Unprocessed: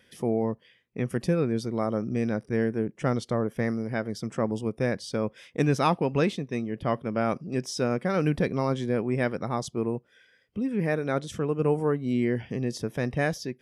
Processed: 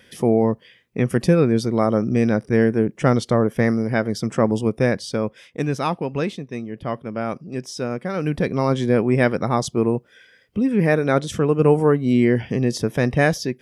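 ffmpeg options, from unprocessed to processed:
ffmpeg -i in.wav -af "volume=17.5dB,afade=type=out:start_time=4.68:duration=0.92:silence=0.375837,afade=type=in:start_time=8.2:duration=0.72:silence=0.375837" out.wav

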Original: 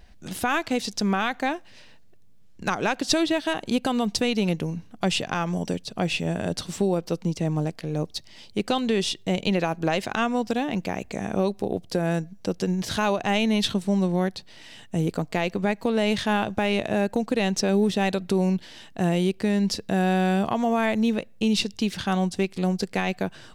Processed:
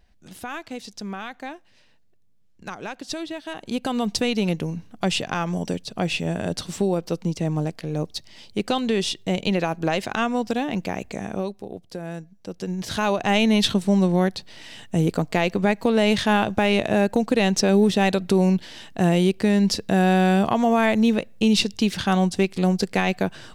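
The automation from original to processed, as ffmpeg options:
ffmpeg -i in.wav -af "volume=13.5dB,afade=type=in:start_time=3.45:duration=0.63:silence=0.316228,afade=type=out:start_time=11.05:duration=0.57:silence=0.334965,afade=type=in:start_time=12.46:duration=0.96:silence=0.237137" out.wav

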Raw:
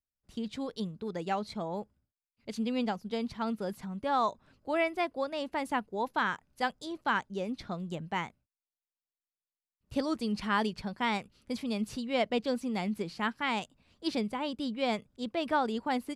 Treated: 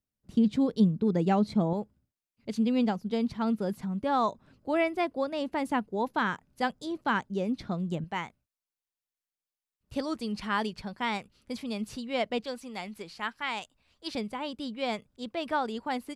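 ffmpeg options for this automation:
ffmpeg -i in.wav -af "asetnsamples=nb_out_samples=441:pad=0,asendcmd='1.73 equalizer g 6.5;8.04 equalizer g -1.5;12.44 equalizer g -10;14.15 equalizer g -2.5',equalizer=frequency=190:width_type=o:width=2.7:gain=14" out.wav

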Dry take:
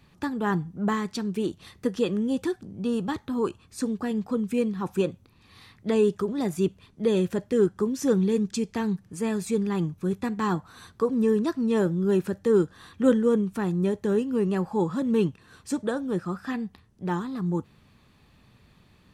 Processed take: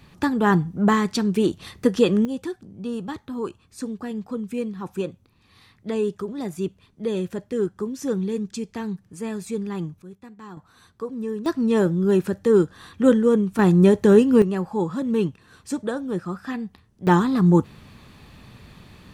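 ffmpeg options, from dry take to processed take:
ffmpeg -i in.wav -af "asetnsamples=nb_out_samples=441:pad=0,asendcmd='2.25 volume volume -2.5dB;10.02 volume volume -15dB;10.57 volume volume -6.5dB;11.46 volume volume 4dB;13.59 volume volume 10.5dB;14.42 volume volume 1dB;17.07 volume volume 11.5dB',volume=7.5dB" out.wav

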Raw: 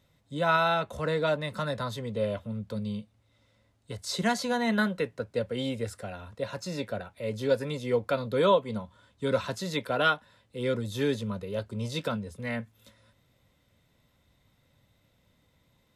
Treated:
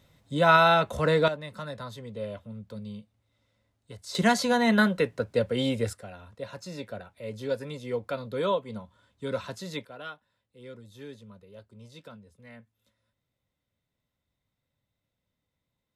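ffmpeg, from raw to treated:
ffmpeg -i in.wav -af "asetnsamples=nb_out_samples=441:pad=0,asendcmd='1.28 volume volume -6dB;4.15 volume volume 4.5dB;5.93 volume volume -4.5dB;9.85 volume volume -16dB',volume=5.5dB" out.wav

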